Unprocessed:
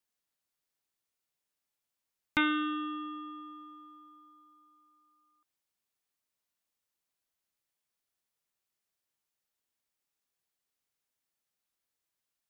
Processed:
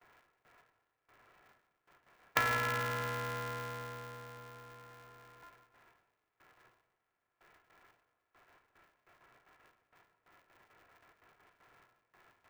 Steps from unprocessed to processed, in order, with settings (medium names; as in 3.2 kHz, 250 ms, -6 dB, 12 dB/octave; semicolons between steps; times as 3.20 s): spectral levelling over time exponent 0.6; gate with hold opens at -57 dBFS; dynamic bell 1.5 kHz, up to +5 dB, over -48 dBFS, Q 1.4; compression 5:1, threshold -34 dBFS, peak gain reduction 13.5 dB; cabinet simulation 290–2200 Hz, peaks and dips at 350 Hz -3 dB, 520 Hz +9 dB, 750 Hz +4 dB, 1.1 kHz +4 dB, 1.6 kHz +5 dB; on a send at -7 dB: reverberation RT60 0.95 s, pre-delay 41 ms; on the sum: polarity switched at an audio rate 180 Hz; trim +3 dB